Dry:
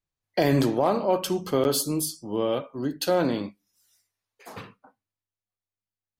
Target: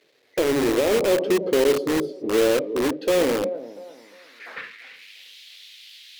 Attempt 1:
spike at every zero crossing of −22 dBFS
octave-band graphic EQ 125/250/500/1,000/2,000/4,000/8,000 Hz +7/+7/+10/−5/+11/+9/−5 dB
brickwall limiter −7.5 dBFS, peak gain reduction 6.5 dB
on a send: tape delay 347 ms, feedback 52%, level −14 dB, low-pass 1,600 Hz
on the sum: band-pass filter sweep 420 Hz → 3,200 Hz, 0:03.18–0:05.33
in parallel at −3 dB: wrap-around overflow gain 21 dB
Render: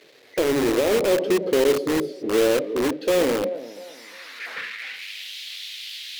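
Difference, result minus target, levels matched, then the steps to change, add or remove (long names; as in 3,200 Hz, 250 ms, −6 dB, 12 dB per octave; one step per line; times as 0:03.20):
spike at every zero crossing: distortion +10 dB
change: spike at every zero crossing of −32 dBFS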